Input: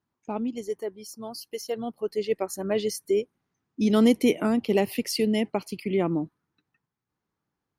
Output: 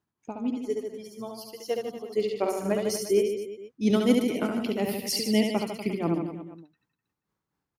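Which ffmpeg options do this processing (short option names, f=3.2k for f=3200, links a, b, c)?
-filter_complex "[0:a]tremolo=f=4.1:d=0.88,asplit=3[a][b][c];[a]afade=t=out:st=2.28:d=0.02[d];[b]asplit=2[e][f];[f]adelay=46,volume=-4dB[g];[e][g]amix=inputs=2:normalize=0,afade=t=in:st=2.28:d=0.02,afade=t=out:st=2.7:d=0.02[h];[c]afade=t=in:st=2.7:d=0.02[i];[d][h][i]amix=inputs=3:normalize=0,aecho=1:1:70|150.5|243.1|349.5|472:0.631|0.398|0.251|0.158|0.1,volume=1.5dB"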